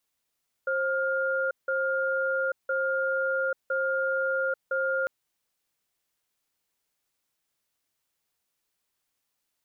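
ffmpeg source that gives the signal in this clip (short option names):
-f lavfi -i "aevalsrc='0.0447*(sin(2*PI*532*t)+sin(2*PI*1410*t))*clip(min(mod(t,1.01),0.84-mod(t,1.01))/0.005,0,1)':d=4.4:s=44100"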